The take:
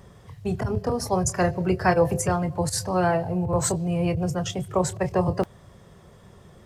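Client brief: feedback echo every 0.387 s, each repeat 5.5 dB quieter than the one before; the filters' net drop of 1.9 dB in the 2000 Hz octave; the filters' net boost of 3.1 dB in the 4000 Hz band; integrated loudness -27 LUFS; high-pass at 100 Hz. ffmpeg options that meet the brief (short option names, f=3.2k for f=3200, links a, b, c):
-af "highpass=100,equalizer=f=2k:t=o:g=-3.5,equalizer=f=4k:t=o:g=5,aecho=1:1:387|774|1161|1548|1935|2322|2709:0.531|0.281|0.149|0.079|0.0419|0.0222|0.0118,volume=-3dB"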